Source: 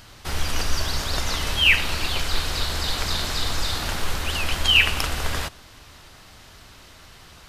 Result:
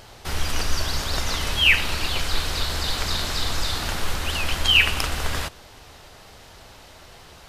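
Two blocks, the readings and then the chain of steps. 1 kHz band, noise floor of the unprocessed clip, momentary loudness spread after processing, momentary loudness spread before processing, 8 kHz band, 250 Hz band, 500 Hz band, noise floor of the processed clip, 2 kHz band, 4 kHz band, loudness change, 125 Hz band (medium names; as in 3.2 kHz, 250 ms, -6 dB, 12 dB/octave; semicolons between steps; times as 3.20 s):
0.0 dB, -47 dBFS, 11 LU, 11 LU, 0.0 dB, 0.0 dB, 0.0 dB, -47 dBFS, 0.0 dB, 0.0 dB, 0.0 dB, 0.0 dB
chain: band noise 360–930 Hz -54 dBFS; vibrato 4.5 Hz 25 cents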